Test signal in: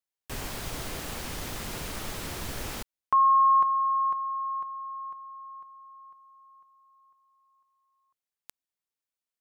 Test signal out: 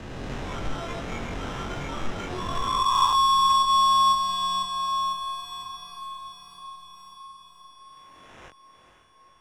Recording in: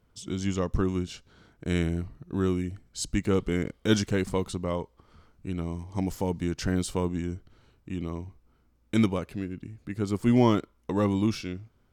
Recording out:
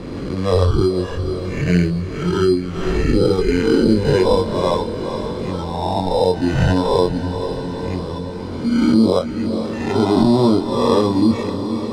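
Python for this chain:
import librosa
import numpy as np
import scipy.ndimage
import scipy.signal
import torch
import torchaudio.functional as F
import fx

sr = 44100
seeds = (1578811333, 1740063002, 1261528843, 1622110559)

p1 = fx.spec_swells(x, sr, rise_s=1.6)
p2 = fx.noise_reduce_blind(p1, sr, reduce_db=14)
p3 = fx.env_lowpass_down(p2, sr, base_hz=750.0, full_db=-18.5)
p4 = fx.high_shelf(p3, sr, hz=2000.0, db=-11.0)
p5 = fx.over_compress(p4, sr, threshold_db=-28.0, ratio=-1.0)
p6 = p4 + F.gain(torch.from_numpy(p5), 2.0).numpy()
p7 = fx.sample_hold(p6, sr, seeds[0], rate_hz=4500.0, jitter_pct=0)
p8 = fx.air_absorb(p7, sr, metres=93.0)
p9 = fx.doubler(p8, sr, ms=22.0, db=-3.5)
p10 = fx.echo_diffused(p9, sr, ms=482, feedback_pct=58, wet_db=-11.5)
p11 = fx.band_squash(p10, sr, depth_pct=40)
y = F.gain(torch.from_numpy(p11), 4.5).numpy()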